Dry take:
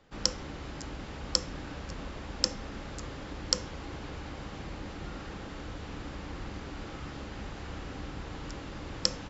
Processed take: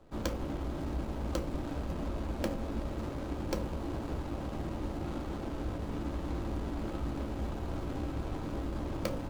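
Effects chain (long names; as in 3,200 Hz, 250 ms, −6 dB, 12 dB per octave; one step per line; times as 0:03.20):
running median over 25 samples
on a send: convolution reverb RT60 0.20 s, pre-delay 3 ms, DRR 7.5 dB
on the sum: level +4.5 dB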